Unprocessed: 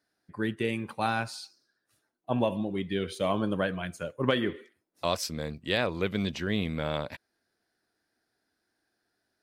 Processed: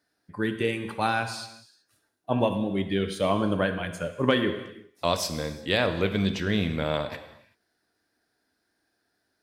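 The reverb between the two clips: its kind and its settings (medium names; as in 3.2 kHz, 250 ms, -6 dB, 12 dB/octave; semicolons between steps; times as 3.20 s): gated-style reverb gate 410 ms falling, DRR 8 dB; trim +3 dB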